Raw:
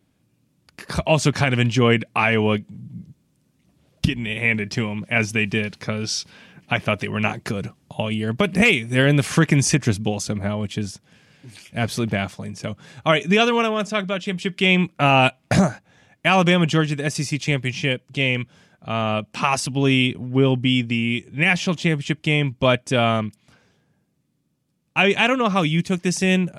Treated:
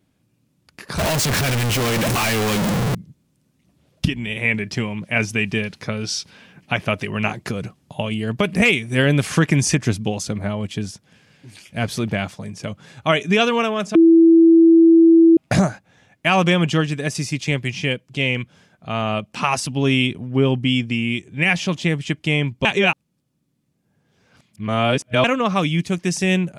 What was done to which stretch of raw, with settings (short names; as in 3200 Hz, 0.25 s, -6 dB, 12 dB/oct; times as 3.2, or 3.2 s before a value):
0.98–2.95 infinite clipping
13.95–15.37 bleep 330 Hz -7 dBFS
22.65–25.24 reverse